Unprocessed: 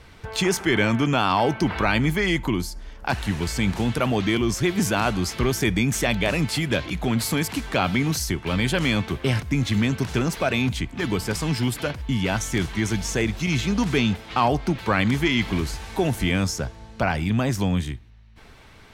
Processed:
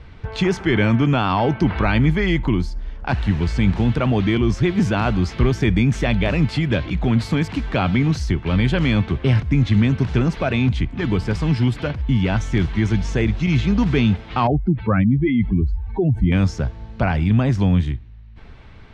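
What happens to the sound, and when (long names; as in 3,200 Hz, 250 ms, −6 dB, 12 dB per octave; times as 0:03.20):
0:14.47–0:16.32: expanding power law on the bin magnitudes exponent 2.2
whole clip: low-pass filter 3,800 Hz 12 dB per octave; low-shelf EQ 210 Hz +10 dB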